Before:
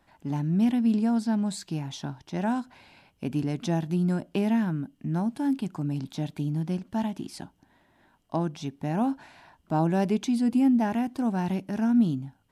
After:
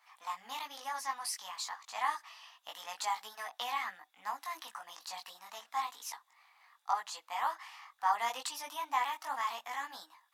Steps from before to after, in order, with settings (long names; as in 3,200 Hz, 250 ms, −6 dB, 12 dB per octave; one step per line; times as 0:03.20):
multi-voice chorus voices 4, 0.74 Hz, delay 23 ms, depth 4.1 ms
speed change +21%
inverse Chebyshev high-pass filter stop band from 400 Hz, stop band 40 dB
level +4.5 dB